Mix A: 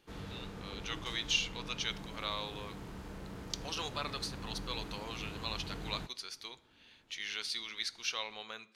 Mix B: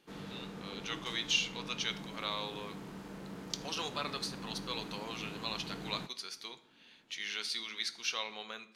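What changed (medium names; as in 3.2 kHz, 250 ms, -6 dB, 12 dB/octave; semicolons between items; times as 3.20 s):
speech: send +6.0 dB; master: add resonant low shelf 120 Hz -11.5 dB, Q 1.5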